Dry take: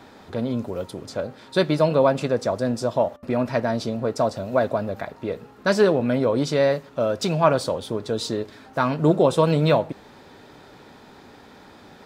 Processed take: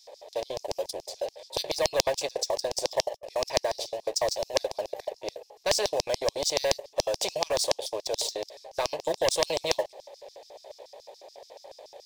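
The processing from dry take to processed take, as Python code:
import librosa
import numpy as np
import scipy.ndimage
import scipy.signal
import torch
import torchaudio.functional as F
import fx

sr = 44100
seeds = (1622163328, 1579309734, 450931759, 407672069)

y = fx.filter_lfo_highpass(x, sr, shape='square', hz=7.0, low_hz=570.0, high_hz=5300.0, q=6.0)
y = fx.leveller(y, sr, passes=1)
y = fx.fixed_phaser(y, sr, hz=570.0, stages=4)
y = fx.spectral_comp(y, sr, ratio=2.0)
y = F.gain(torch.from_numpy(y), -5.5).numpy()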